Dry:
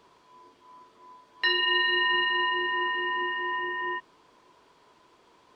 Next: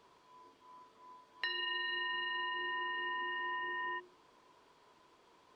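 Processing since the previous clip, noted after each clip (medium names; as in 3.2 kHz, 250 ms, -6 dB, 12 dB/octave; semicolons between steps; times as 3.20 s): hum notches 60/120/180/240/300/360 Hz; compression 6:1, threshold -30 dBFS, peak gain reduction 9.5 dB; trim -5.5 dB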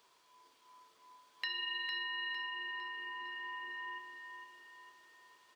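tilt EQ +3.5 dB/octave; crackle 530 per s -63 dBFS; on a send: feedback delay 455 ms, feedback 50%, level -7 dB; on the sum: trim -5 dB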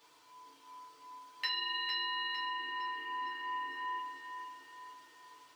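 FDN reverb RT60 0.31 s, low-frequency decay 1.25×, high-frequency decay 0.95×, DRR -4 dB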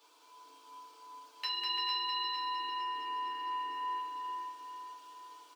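high-pass 280 Hz 24 dB/octave; peaking EQ 1.9 kHz -13.5 dB 0.22 oct; on a send: bouncing-ball echo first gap 200 ms, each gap 0.7×, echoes 5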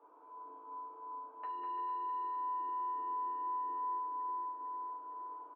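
low-pass 1.1 kHz 24 dB/octave; compression 2:1, threshold -50 dBFS, peak gain reduction 7.5 dB; doubling 34 ms -12.5 dB; trim +6.5 dB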